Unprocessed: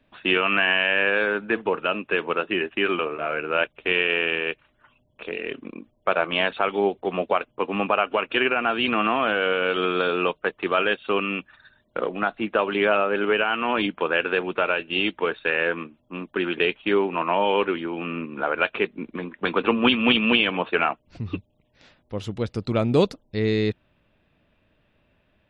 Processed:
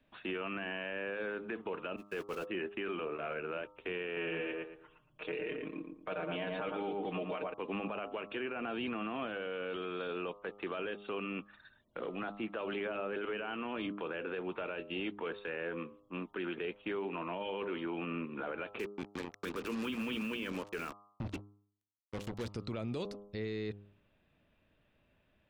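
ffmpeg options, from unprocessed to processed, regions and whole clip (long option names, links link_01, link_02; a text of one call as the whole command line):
ffmpeg -i in.wav -filter_complex "[0:a]asettb=1/sr,asplit=3[link_01][link_02][link_03];[link_01]atrim=end=1.964[link_04];[link_02]atrim=start=1.96:end=2.47,asetpts=PTS-STARTPTS,afade=type=in:duration=0.004:curve=qsin,afade=type=out:start_time=0.506:duration=0.004:curve=qsin,aeval=exprs='val(0)+0.5*0.0398*sgn(val(0))':channel_layout=same,agate=range=-43dB:threshold=-25dB:ratio=16:release=100:detection=peak[link_05];[link_03]atrim=start=2.466[link_06];[link_04][link_05]acrossfade=duration=0.004:curve1=hsin:curve2=qsin[link_07];[link_07][link_06]acrossfade=duration=0.004:curve1=qsin:curve2=hsin,asettb=1/sr,asplit=3[link_08][link_09][link_10];[link_08]atrim=end=4.164[link_11];[link_09]atrim=start=4.16:end=7.54,asetpts=PTS-STARTPTS,afade=type=in:duration=0.004:curve=qsin,afade=type=out:start_time=3.376:duration=0.004:curve=qsin,aecho=1:1:6.5:0.67,atrim=end_sample=149058,asplit=2[link_12][link_13];[link_13]adelay=114,lowpass=frequency=1300:poles=1,volume=-4dB,asplit=2[link_14][link_15];[link_15]adelay=114,lowpass=frequency=1300:poles=1,volume=0.33,asplit=2[link_16][link_17];[link_17]adelay=114,lowpass=frequency=1300:poles=1,volume=0.33,asplit=2[link_18][link_19];[link_19]adelay=114,lowpass=frequency=1300:poles=1,volume=0.33[link_20];[link_12][link_14][link_16][link_18][link_20]amix=inputs=5:normalize=0,atrim=end_sample=149058[link_21];[link_10]atrim=start=7.536[link_22];[link_11][link_21]acrossfade=duration=0.004:curve1=hsin:curve2=qsin[link_23];[link_23][link_22]acrossfade=duration=0.004:curve1=qsin:curve2=hsin,asettb=1/sr,asplit=3[link_24][link_25][link_26];[link_24]atrim=end=18.794[link_27];[link_25]atrim=start=18.79:end=22.5,asetpts=PTS-STARTPTS,afade=type=in:duration=0.004:curve=qsin,afade=type=out:start_time=3.706:duration=0.004:curve=qsin,equalizer=frequency=750:width_type=o:width=0.55:gain=-14,bandreject=frequency=60:width_type=h:width=6,bandreject=frequency=120:width_type=h:width=6,bandreject=frequency=180:width_type=h:width=6,bandreject=frequency=240:width_type=h:width=6,bandreject=frequency=300:width_type=h:width=6,acrusher=bits=4:mix=0:aa=0.5[link_28];[link_26]atrim=start=22.496[link_29];[link_27][link_28]acrossfade=duration=0.004:curve1=hsin:curve2=qsin[link_30];[link_30][link_29]acrossfade=duration=0.004:curve1=qsin:curve2=hsin,bandreject=frequency=101.8:width_type=h:width=4,bandreject=frequency=203.6:width_type=h:width=4,bandreject=frequency=305.4:width_type=h:width=4,bandreject=frequency=407.2:width_type=h:width=4,bandreject=frequency=509:width_type=h:width=4,bandreject=frequency=610.8:width_type=h:width=4,bandreject=frequency=712.6:width_type=h:width=4,bandreject=frequency=814.4:width_type=h:width=4,bandreject=frequency=916.2:width_type=h:width=4,bandreject=frequency=1018:width_type=h:width=4,bandreject=frequency=1119.8:width_type=h:width=4,bandreject=frequency=1221.6:width_type=h:width=4,bandreject=frequency=1323.4:width_type=h:width=4,acrossover=split=530|1900[link_31][link_32][link_33];[link_31]acompressor=threshold=-27dB:ratio=4[link_34];[link_32]acompressor=threshold=-34dB:ratio=4[link_35];[link_33]acompressor=threshold=-38dB:ratio=4[link_36];[link_34][link_35][link_36]amix=inputs=3:normalize=0,alimiter=limit=-22.5dB:level=0:latency=1:release=12,volume=-7dB" out.wav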